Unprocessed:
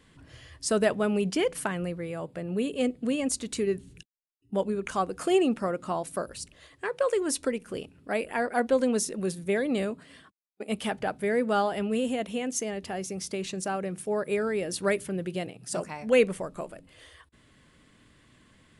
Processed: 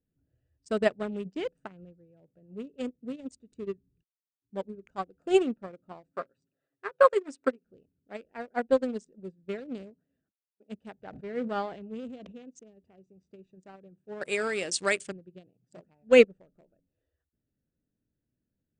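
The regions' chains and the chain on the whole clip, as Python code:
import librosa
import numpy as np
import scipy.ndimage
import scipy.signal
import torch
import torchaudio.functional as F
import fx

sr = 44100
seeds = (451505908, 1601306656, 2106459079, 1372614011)

y = fx.chain(x, sr, fx.highpass(hz=180.0, slope=12),
    fx.peak_eq(hz=1300.0, db=9.5, octaves=0.8),
    fx.comb(ms=7.4, depth=0.48), at=(6.11, 7.64))
y = fx.chain(y, sr, fx.air_absorb(metres=78.0),
    fx.sustainer(db_per_s=27.0), at=(10.97, 12.48))
y = fx.chain(y, sr, fx.tilt_eq(slope=4.0),
    fx.env_flatten(amount_pct=70), at=(14.21, 15.12))
y = fx.wiener(y, sr, points=41)
y = scipy.signal.sosfilt(scipy.signal.butter(12, 8600.0, 'lowpass', fs=sr, output='sos'), y)
y = fx.upward_expand(y, sr, threshold_db=-36.0, expansion=2.5)
y = y * librosa.db_to_amplitude(5.5)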